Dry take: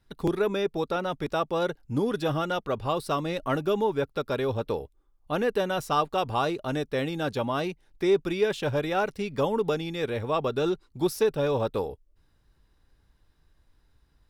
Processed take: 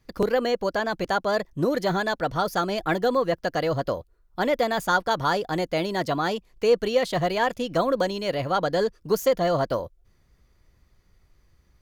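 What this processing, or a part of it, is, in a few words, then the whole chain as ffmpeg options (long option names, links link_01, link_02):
nightcore: -af "asetrate=53361,aresample=44100,volume=3dB"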